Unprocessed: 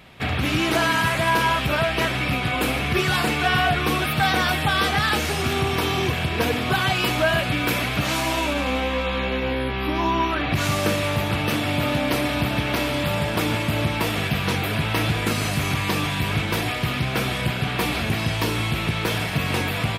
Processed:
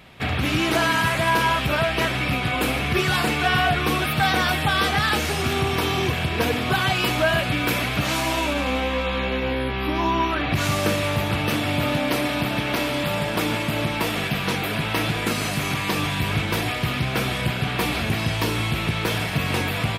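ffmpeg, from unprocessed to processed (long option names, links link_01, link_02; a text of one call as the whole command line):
ffmpeg -i in.wav -filter_complex "[0:a]asettb=1/sr,asplit=3[link_01][link_02][link_03];[link_01]atrim=end=11.964[link_04];[link_02]atrim=start=11.96:end=15.98,asetpts=PTS-STARTPTS,afade=type=in:duration=0.004:curve=qsin,afade=type=out:start_time=4.016:duration=0.004:curve=qsin,equalizer=frequency=80:width_type=o:width=0.77:gain=-10.5[link_05];[link_03]atrim=start=15.976[link_06];[link_04][link_05]acrossfade=duration=0.004:curve1=hsin:curve2=qsin[link_07];[link_07][link_06]acrossfade=duration=0.004:curve1=qsin:curve2=hsin" out.wav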